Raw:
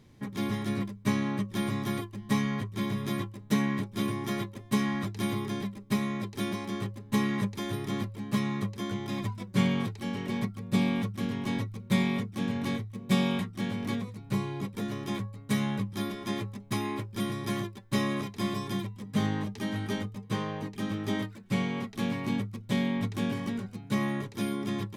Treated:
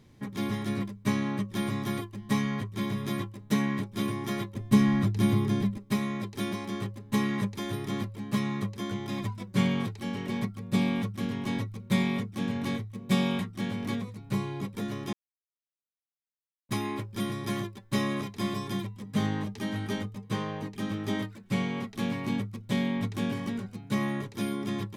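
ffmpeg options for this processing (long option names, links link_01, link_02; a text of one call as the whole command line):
ffmpeg -i in.wav -filter_complex "[0:a]asettb=1/sr,asplit=3[link_01][link_02][link_03];[link_01]atrim=end=4.544[link_04];[link_02]atrim=start=4.54:end=5.78,asetpts=PTS-STARTPTS,afade=type=in:duration=0.004:curve=qsin,afade=type=out:start_time=1.236:duration=0.004:curve=qsin,lowshelf=frequency=240:gain=12[link_05];[link_03]atrim=start=5.776[link_06];[link_04][link_05]acrossfade=duration=0.004:curve1=hsin:curve2=qsin[link_07];[link_07][link_06]acrossfade=duration=0.004:curve1=qsin:curve2=hsin,asplit=3[link_08][link_09][link_10];[link_08]atrim=end=15.13,asetpts=PTS-STARTPTS,afade=type=out:start_time=15.126:duration=0.004:curve=hsin[link_11];[link_09]atrim=start=15.13:end=16.69,asetpts=PTS-STARTPTS,volume=0[link_12];[link_10]atrim=start=16.69,asetpts=PTS-STARTPTS,afade=type=in:duration=0.004:curve=hsin[link_13];[link_11][link_12][link_13]concat=n=3:v=0:a=1" out.wav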